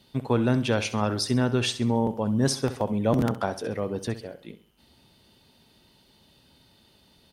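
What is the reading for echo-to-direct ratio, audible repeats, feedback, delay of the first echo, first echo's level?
-13.5 dB, 3, 39%, 66 ms, -14.0 dB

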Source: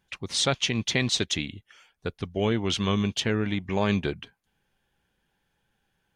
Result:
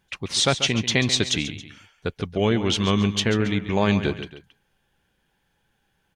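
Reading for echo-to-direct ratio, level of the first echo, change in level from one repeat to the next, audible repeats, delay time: -11.0 dB, -12.0 dB, -7.0 dB, 2, 138 ms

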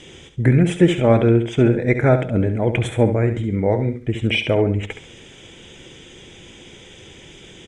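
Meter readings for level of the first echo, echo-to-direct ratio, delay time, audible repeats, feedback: -9.5 dB, -9.0 dB, 69 ms, 3, 30%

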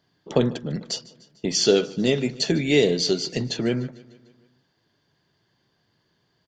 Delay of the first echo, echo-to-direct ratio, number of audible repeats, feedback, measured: 149 ms, -19.0 dB, 4, 59%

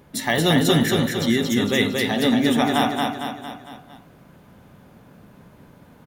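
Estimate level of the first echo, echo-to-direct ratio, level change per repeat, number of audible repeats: -3.0 dB, -1.5 dB, -5.5 dB, 5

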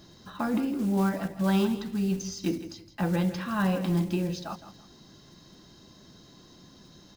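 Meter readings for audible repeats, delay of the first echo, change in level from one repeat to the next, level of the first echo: 2, 163 ms, -11.0 dB, -13.0 dB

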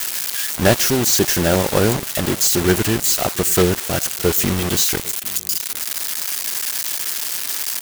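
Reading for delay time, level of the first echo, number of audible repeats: 800 ms, -23.0 dB, 1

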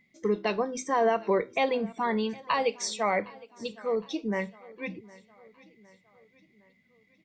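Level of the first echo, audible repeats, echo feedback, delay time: -22.0 dB, 3, 52%, 761 ms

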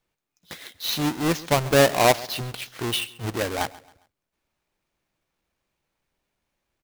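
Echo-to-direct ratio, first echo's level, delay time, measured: -19.5 dB, -20.0 dB, 135 ms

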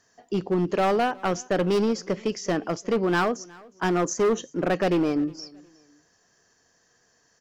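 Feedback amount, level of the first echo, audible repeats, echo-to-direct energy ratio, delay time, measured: 29%, -24.0 dB, 2, -23.5 dB, 362 ms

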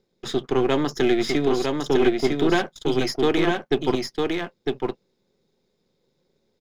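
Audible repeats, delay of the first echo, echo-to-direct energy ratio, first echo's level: 1, 954 ms, -3.5 dB, -3.5 dB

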